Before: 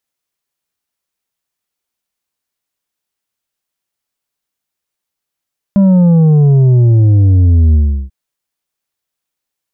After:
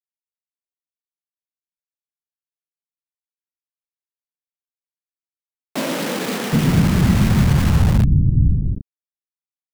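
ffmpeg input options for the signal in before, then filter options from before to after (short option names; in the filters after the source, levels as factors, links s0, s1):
-f lavfi -i "aevalsrc='0.531*clip((2.34-t)/0.36,0,1)*tanh(2*sin(2*PI*200*2.34/log(65/200)*(exp(log(65/200)*t/2.34)-1)))/tanh(2)':d=2.34:s=44100"
-filter_complex "[0:a]afftfilt=real='hypot(re,im)*cos(2*PI*random(0))':imag='hypot(re,im)*sin(2*PI*random(1))':win_size=512:overlap=0.75,acrusher=bits=3:mix=0:aa=0.000001,acrossover=split=280[s0][s1];[s0]adelay=770[s2];[s2][s1]amix=inputs=2:normalize=0"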